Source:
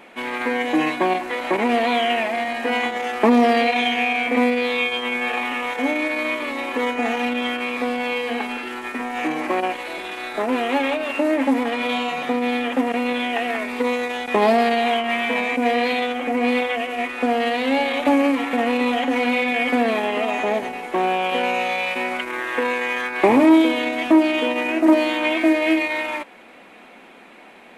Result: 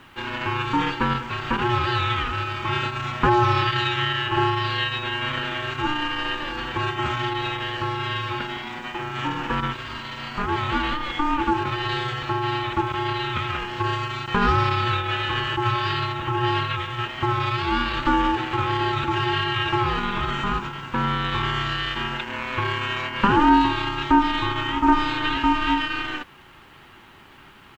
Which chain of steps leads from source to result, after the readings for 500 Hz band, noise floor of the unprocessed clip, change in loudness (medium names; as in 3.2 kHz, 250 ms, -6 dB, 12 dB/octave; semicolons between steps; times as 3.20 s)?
-10.0 dB, -45 dBFS, -3.0 dB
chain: resampled via 16 kHz; word length cut 10-bit, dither none; ring modulator 600 Hz